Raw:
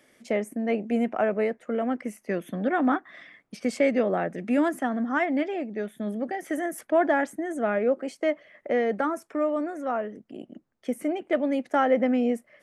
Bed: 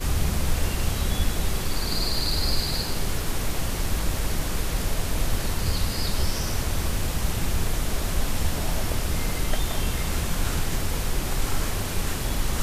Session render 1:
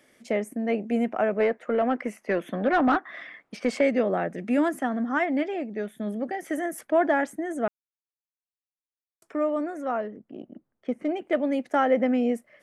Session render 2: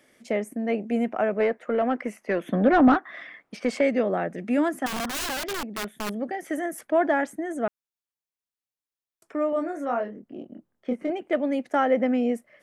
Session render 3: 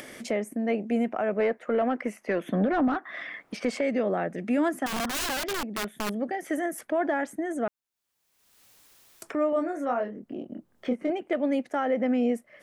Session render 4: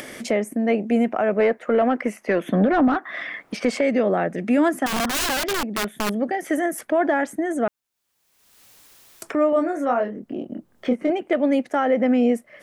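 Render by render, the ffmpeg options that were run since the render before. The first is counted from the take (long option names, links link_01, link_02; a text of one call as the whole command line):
ffmpeg -i in.wav -filter_complex "[0:a]asettb=1/sr,asplit=3[link_01][link_02][link_03];[link_01]atrim=end=1.404[link_04];[link_02]atrim=start=1.4:end=3.81,asetpts=PTS-STARTPTS,afade=type=in:duration=0.004:curve=qsin,afade=type=out:start_time=2.406:duration=0.004:curve=qsin,asplit=2[link_05][link_06];[link_06]highpass=frequency=720:poles=1,volume=15dB,asoftclip=type=tanh:threshold=-11.5dB[link_07];[link_05][link_07]amix=inputs=2:normalize=0,lowpass=frequency=1800:poles=1,volume=-6dB[link_08];[link_03]atrim=start=3.806[link_09];[link_04][link_08]acrossfade=duration=0.004:curve1=hsin:curve2=qsin[link_10];[link_10][link_09]acrossfade=duration=0.004:curve1=qsin:curve2=hsin,asettb=1/sr,asplit=3[link_11][link_12][link_13];[link_11]atrim=end=10.004[link_14];[link_12]atrim=start=10:end=11.09,asetpts=PTS-STARTPTS,afade=type=in:duration=0.004:curve=qsin,afade=type=out:start_time=1.086:duration=0.004:curve=qsin,adynamicsmooth=sensitivity=5.5:basefreq=2100[link_15];[link_13]atrim=start=11.086[link_16];[link_14][link_15]acrossfade=duration=0.004:curve1=hsin:curve2=qsin[link_17];[link_17][link_16]acrossfade=duration=0.004:curve1=qsin:curve2=hsin,asplit=3[link_18][link_19][link_20];[link_18]atrim=end=7.68,asetpts=PTS-STARTPTS,afade=type=out:start_time=7.676:duration=0.004:curve=hsin[link_21];[link_19]atrim=start=7.68:end=9.22,asetpts=PTS-STARTPTS,volume=0[link_22];[link_20]atrim=start=9.22,asetpts=PTS-STARTPTS,afade=type=in:duration=0.004:curve=hsin[link_23];[link_21][link_22][link_23]concat=n=3:v=0:a=1" out.wav
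ffmpeg -i in.wav -filter_complex "[0:a]asettb=1/sr,asplit=3[link_01][link_02][link_03];[link_01]atrim=end=2.474[link_04];[link_02]atrim=start=2.47:end=2.94,asetpts=PTS-STARTPTS,afade=type=in:duration=0.004:curve=qsin,afade=type=out:start_time=0.466:duration=0.004:curve=qsin,lowshelf=frequency=440:gain=9[link_05];[link_03]atrim=start=2.936[link_06];[link_04][link_05]acrossfade=duration=0.004:curve1=hsin:curve2=qsin[link_07];[link_07][link_06]acrossfade=duration=0.004:curve1=qsin:curve2=hsin,asettb=1/sr,asplit=3[link_08][link_09][link_10];[link_08]atrim=end=4.864[link_11];[link_09]atrim=start=4.86:end=6.11,asetpts=PTS-STARTPTS,afade=type=in:duration=0.004:curve=qsin,afade=type=out:start_time=1.246:duration=0.004:curve=qsin,aeval=exprs='(mod(17.8*val(0)+1,2)-1)/17.8':channel_layout=same[link_12];[link_10]atrim=start=6.106[link_13];[link_11][link_12]acrossfade=duration=0.004:curve1=hsin:curve2=qsin[link_14];[link_14][link_13]acrossfade=duration=0.004:curve1=qsin:curve2=hsin,asettb=1/sr,asplit=3[link_15][link_16][link_17];[link_15]atrim=end=9.504[link_18];[link_16]atrim=start=9.5:end=11.1,asetpts=PTS-STARTPTS,afade=type=in:duration=0.004:curve=qsin,afade=type=out:start_time=1.596:duration=0.004:curve=qsin,asplit=2[link_19][link_20];[link_20]adelay=25,volume=-4dB[link_21];[link_19][link_21]amix=inputs=2:normalize=0,atrim=end_sample=70560[link_22];[link_17]atrim=start=11.096[link_23];[link_18][link_22]acrossfade=duration=0.004:curve1=hsin:curve2=qsin[link_24];[link_24][link_23]acrossfade=duration=0.004:curve1=qsin:curve2=hsin" out.wav
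ffmpeg -i in.wav -af "alimiter=limit=-17.5dB:level=0:latency=1:release=90,acompressor=mode=upward:threshold=-30dB:ratio=2.5" out.wav
ffmpeg -i in.wav -af "volume=6.5dB" out.wav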